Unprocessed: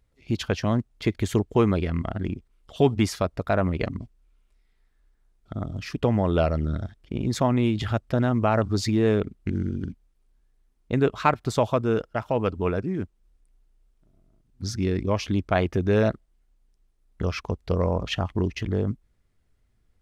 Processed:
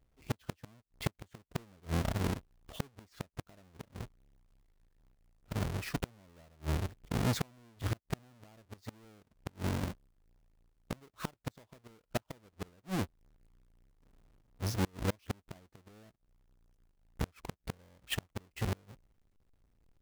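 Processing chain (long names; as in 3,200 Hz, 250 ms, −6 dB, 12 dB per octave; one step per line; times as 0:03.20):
each half-wave held at its own peak
gate with flip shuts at −15 dBFS, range −34 dB
level −8.5 dB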